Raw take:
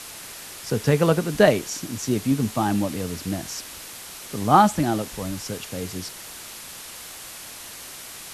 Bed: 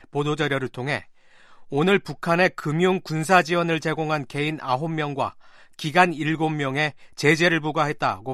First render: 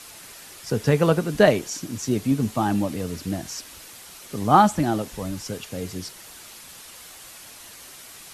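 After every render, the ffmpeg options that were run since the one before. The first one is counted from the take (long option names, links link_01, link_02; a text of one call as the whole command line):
ffmpeg -i in.wav -af "afftdn=noise_reduction=6:noise_floor=-40" out.wav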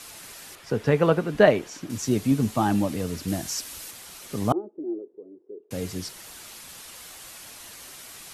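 ffmpeg -i in.wav -filter_complex "[0:a]asettb=1/sr,asplit=3[link_01][link_02][link_03];[link_01]atrim=end=0.554[link_04];[link_02]atrim=start=0.55:end=1.9,asetpts=PTS-STARTPTS,afade=type=in:duration=0.004:curve=qsin,afade=type=out:start_time=1.346:duration=0.004:curve=qsin,bass=frequency=250:gain=-4,treble=frequency=4000:gain=-12[link_05];[link_03]atrim=start=1.896[link_06];[link_04][link_05]acrossfade=duration=0.004:curve1=hsin:curve2=qsin[link_07];[link_07][link_06]acrossfade=duration=0.004:curve1=qsin:curve2=hsin,asettb=1/sr,asplit=3[link_08][link_09][link_10];[link_08]atrim=end=3.284[link_11];[link_09]atrim=start=3.28:end=3.91,asetpts=PTS-STARTPTS,afade=type=in:duration=0.004:curve=qsin,afade=type=out:start_time=0.626:duration=0.004:curve=qsin,highshelf=frequency=5100:gain=6.5[link_12];[link_10]atrim=start=3.906[link_13];[link_11][link_12]acrossfade=duration=0.004:curve1=hsin:curve2=qsin[link_14];[link_14][link_13]acrossfade=duration=0.004:curve1=qsin:curve2=hsin,asettb=1/sr,asplit=3[link_15][link_16][link_17];[link_15]atrim=end=4.524[link_18];[link_16]atrim=start=4.52:end=5.71,asetpts=PTS-STARTPTS,afade=type=in:duration=0.004:curve=qsin,afade=type=out:start_time=1.186:duration=0.004:curve=qsin,asuperpass=centerf=380:order=4:qfactor=4[link_19];[link_17]atrim=start=5.706[link_20];[link_18][link_19]acrossfade=duration=0.004:curve1=hsin:curve2=qsin[link_21];[link_21][link_20]acrossfade=duration=0.004:curve1=qsin:curve2=hsin" out.wav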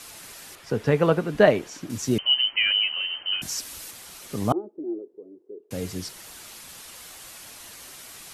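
ffmpeg -i in.wav -filter_complex "[0:a]asettb=1/sr,asplit=3[link_01][link_02][link_03];[link_01]atrim=end=2.184[link_04];[link_02]atrim=start=2.18:end=3.42,asetpts=PTS-STARTPTS,afade=type=in:duration=0.004:curve=qsin,afade=type=out:start_time=1.236:duration=0.004:curve=qsin,lowpass=frequency=2700:width_type=q:width=0.5098,lowpass=frequency=2700:width_type=q:width=0.6013,lowpass=frequency=2700:width_type=q:width=0.9,lowpass=frequency=2700:width_type=q:width=2.563,afreqshift=-3200[link_05];[link_03]atrim=start=3.416[link_06];[link_04][link_05]acrossfade=duration=0.004:curve1=hsin:curve2=qsin[link_07];[link_07][link_06]acrossfade=duration=0.004:curve1=qsin:curve2=hsin" out.wav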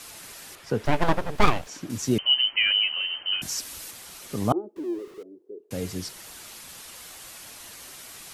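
ffmpeg -i in.wav -filter_complex "[0:a]asettb=1/sr,asplit=3[link_01][link_02][link_03];[link_01]atrim=end=0.854[link_04];[link_02]atrim=start=0.85:end=1.67,asetpts=PTS-STARTPTS,afade=type=in:duration=0.004:curve=qsin,afade=type=out:start_time=0.816:duration=0.004:curve=qsin,aeval=exprs='abs(val(0))':channel_layout=same[link_05];[link_03]atrim=start=1.666[link_06];[link_04][link_05]acrossfade=duration=0.004:curve1=hsin:curve2=qsin[link_07];[link_07][link_06]acrossfade=duration=0.004:curve1=qsin:curve2=hsin,asettb=1/sr,asplit=3[link_08][link_09][link_10];[link_08]atrim=end=4.764[link_11];[link_09]atrim=start=4.76:end=5.23,asetpts=PTS-STARTPTS,afade=type=in:duration=0.004:curve=qsin,afade=type=out:start_time=0.466:duration=0.004:curve=qsin,aeval=exprs='val(0)+0.5*0.00708*sgn(val(0))':channel_layout=same[link_12];[link_10]atrim=start=5.226[link_13];[link_11][link_12]acrossfade=duration=0.004:curve1=hsin:curve2=qsin[link_14];[link_14][link_13]acrossfade=duration=0.004:curve1=qsin:curve2=hsin" out.wav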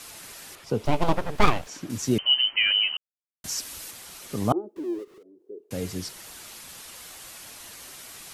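ffmpeg -i in.wav -filter_complex "[0:a]asettb=1/sr,asplit=3[link_01][link_02][link_03];[link_01]atrim=end=0.644[link_04];[link_02]atrim=start=0.64:end=1.16,asetpts=PTS-STARTPTS,afade=type=in:duration=0.004:curve=qsin,afade=type=out:start_time=0.516:duration=0.004:curve=qsin,equalizer=frequency=1700:width_type=o:width=0.44:gain=-13[link_05];[link_03]atrim=start=1.156[link_06];[link_04][link_05]acrossfade=duration=0.004:curve1=hsin:curve2=qsin[link_07];[link_07][link_06]acrossfade=duration=0.004:curve1=qsin:curve2=hsin,asplit=3[link_08][link_09][link_10];[link_08]afade=type=out:start_time=5.03:duration=0.02[link_11];[link_09]acompressor=threshold=-51dB:ratio=3:attack=3.2:release=140:knee=1:detection=peak,afade=type=in:start_time=5.03:duration=0.02,afade=type=out:start_time=5.46:duration=0.02[link_12];[link_10]afade=type=in:start_time=5.46:duration=0.02[link_13];[link_11][link_12][link_13]amix=inputs=3:normalize=0,asplit=3[link_14][link_15][link_16];[link_14]atrim=end=2.97,asetpts=PTS-STARTPTS,afade=type=out:start_time=2.966:duration=0.004:curve=hsin[link_17];[link_15]atrim=start=2.97:end=3.44,asetpts=PTS-STARTPTS,volume=0[link_18];[link_16]atrim=start=3.44,asetpts=PTS-STARTPTS,afade=type=in:duration=0.004:curve=hsin[link_19];[link_17][link_18][link_19]concat=n=3:v=0:a=1" out.wav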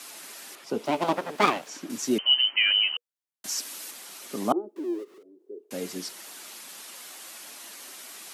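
ffmpeg -i in.wav -af "highpass=frequency=220:width=0.5412,highpass=frequency=220:width=1.3066,bandreject=frequency=480:width=16" out.wav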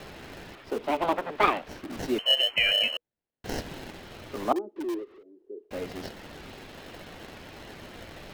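ffmpeg -i in.wav -filter_complex "[0:a]acrossover=split=240|1100|4000[link_01][link_02][link_03][link_04];[link_01]aeval=exprs='(mod(94.4*val(0)+1,2)-1)/94.4':channel_layout=same[link_05];[link_04]acrusher=samples=37:mix=1:aa=0.000001[link_06];[link_05][link_02][link_03][link_06]amix=inputs=4:normalize=0" out.wav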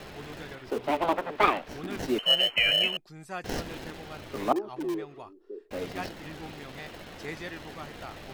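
ffmpeg -i in.wav -i bed.wav -filter_complex "[1:a]volume=-21dB[link_01];[0:a][link_01]amix=inputs=2:normalize=0" out.wav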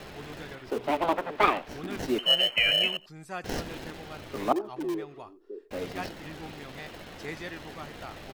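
ffmpeg -i in.wav -af "aecho=1:1:88:0.0708" out.wav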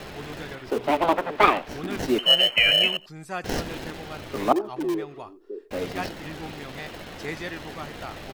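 ffmpeg -i in.wav -af "volume=5dB" out.wav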